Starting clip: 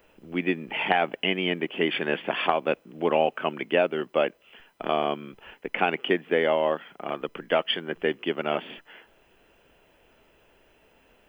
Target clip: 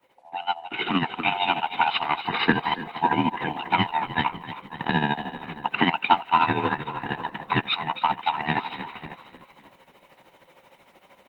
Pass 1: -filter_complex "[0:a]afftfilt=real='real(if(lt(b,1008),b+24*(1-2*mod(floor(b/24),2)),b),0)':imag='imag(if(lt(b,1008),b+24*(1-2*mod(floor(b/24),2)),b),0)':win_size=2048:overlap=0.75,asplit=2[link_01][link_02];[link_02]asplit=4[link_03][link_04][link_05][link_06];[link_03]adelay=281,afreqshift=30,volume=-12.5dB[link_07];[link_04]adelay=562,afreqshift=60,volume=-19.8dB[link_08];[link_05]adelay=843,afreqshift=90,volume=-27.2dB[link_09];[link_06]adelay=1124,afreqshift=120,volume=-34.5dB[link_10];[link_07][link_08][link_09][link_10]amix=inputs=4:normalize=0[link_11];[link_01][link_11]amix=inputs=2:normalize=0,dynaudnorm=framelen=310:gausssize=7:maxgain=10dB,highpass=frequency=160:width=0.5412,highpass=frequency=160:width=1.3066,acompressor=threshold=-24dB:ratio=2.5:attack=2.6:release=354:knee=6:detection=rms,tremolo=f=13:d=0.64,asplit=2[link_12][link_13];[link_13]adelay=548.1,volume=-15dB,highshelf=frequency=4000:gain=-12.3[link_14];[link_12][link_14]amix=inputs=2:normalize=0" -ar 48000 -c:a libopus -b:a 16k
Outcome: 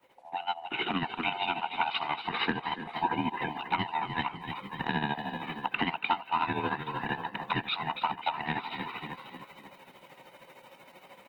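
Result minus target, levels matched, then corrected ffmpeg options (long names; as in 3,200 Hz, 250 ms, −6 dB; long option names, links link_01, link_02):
downward compressor: peak gain reduction +11.5 dB
-filter_complex "[0:a]afftfilt=real='real(if(lt(b,1008),b+24*(1-2*mod(floor(b/24),2)),b),0)':imag='imag(if(lt(b,1008),b+24*(1-2*mod(floor(b/24),2)),b),0)':win_size=2048:overlap=0.75,asplit=2[link_01][link_02];[link_02]asplit=4[link_03][link_04][link_05][link_06];[link_03]adelay=281,afreqshift=30,volume=-12.5dB[link_07];[link_04]adelay=562,afreqshift=60,volume=-19.8dB[link_08];[link_05]adelay=843,afreqshift=90,volume=-27.2dB[link_09];[link_06]adelay=1124,afreqshift=120,volume=-34.5dB[link_10];[link_07][link_08][link_09][link_10]amix=inputs=4:normalize=0[link_11];[link_01][link_11]amix=inputs=2:normalize=0,dynaudnorm=framelen=310:gausssize=7:maxgain=10dB,highpass=frequency=160:width=0.5412,highpass=frequency=160:width=1.3066,tremolo=f=13:d=0.64,asplit=2[link_12][link_13];[link_13]adelay=548.1,volume=-15dB,highshelf=frequency=4000:gain=-12.3[link_14];[link_12][link_14]amix=inputs=2:normalize=0" -ar 48000 -c:a libopus -b:a 16k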